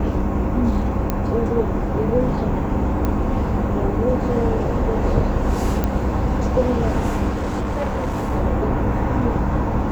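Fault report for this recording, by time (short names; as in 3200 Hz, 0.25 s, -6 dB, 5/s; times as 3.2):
1.1 pop -8 dBFS
3.05 pop -10 dBFS
5.84 pop -8 dBFS
7.29–8.32 clipped -19 dBFS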